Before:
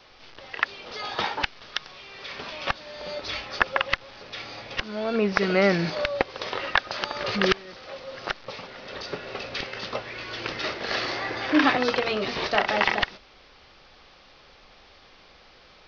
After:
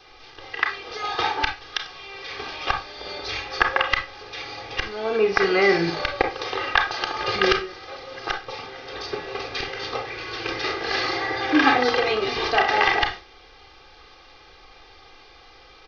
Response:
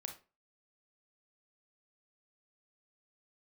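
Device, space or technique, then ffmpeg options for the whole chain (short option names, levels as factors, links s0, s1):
microphone above a desk: -filter_complex "[0:a]aecho=1:1:2.5:0.75[s0];[1:a]atrim=start_sample=2205[s1];[s0][s1]afir=irnorm=-1:irlink=0,volume=1.68"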